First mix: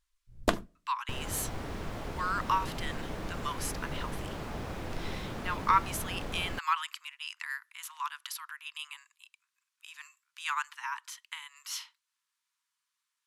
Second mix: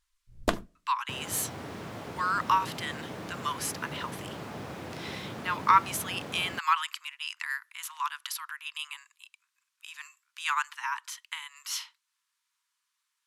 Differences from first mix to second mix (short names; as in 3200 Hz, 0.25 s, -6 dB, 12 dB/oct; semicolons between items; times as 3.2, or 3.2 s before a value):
speech +4.0 dB; second sound: add HPF 100 Hz 24 dB/oct